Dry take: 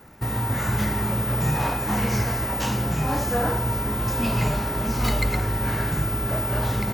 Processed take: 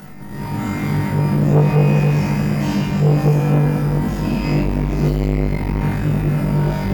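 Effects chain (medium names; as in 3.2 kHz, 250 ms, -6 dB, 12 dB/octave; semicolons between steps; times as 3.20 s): in parallel at 0 dB: peak limiter -21.5 dBFS, peak gain reduction 10.5 dB; on the sum: peaking EQ 200 Hz +13 dB 0.84 oct; upward compressor, threshold -20 dBFS; peaking EQ 9.6 kHz -2.5 dB 0.54 oct; feedback comb 150 Hz, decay 0.37 s, harmonics all, mix 80%; on a send: flutter echo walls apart 3.5 m, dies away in 0.59 s; on the sum: simulated room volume 160 m³, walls hard, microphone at 1 m; transformer saturation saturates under 380 Hz; trim -3 dB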